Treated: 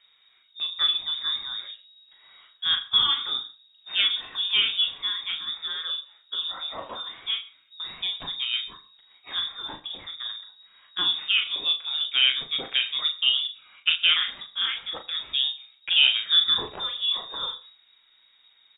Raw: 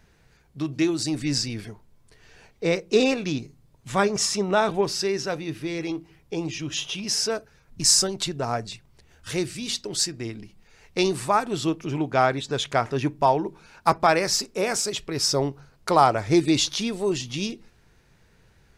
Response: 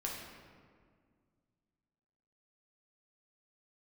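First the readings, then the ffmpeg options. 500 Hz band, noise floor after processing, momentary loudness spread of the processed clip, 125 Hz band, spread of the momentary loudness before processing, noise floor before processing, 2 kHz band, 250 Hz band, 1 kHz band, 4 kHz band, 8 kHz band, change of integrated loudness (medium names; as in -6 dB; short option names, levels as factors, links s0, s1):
-23.5 dB, -61 dBFS, 15 LU, under -20 dB, 13 LU, -59 dBFS, +1.5 dB, -26.0 dB, -15.0 dB, +8.5 dB, under -40 dB, 0.0 dB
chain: -filter_complex "[0:a]lowpass=f=3200:t=q:w=0.5098,lowpass=f=3200:t=q:w=0.6013,lowpass=f=3200:t=q:w=0.9,lowpass=f=3200:t=q:w=2.563,afreqshift=-3800,asplit=2[s0][s1];[s1]adelay=38,volume=0.447[s2];[s0][s2]amix=inputs=2:normalize=0,flanger=delay=1.6:depth=6.1:regen=-72:speed=0.12:shape=sinusoidal,asplit=2[s3][s4];[1:a]atrim=start_sample=2205,atrim=end_sample=3087,adelay=80[s5];[s4][s5]afir=irnorm=-1:irlink=0,volume=0.141[s6];[s3][s6]amix=inputs=2:normalize=0,volume=1.19"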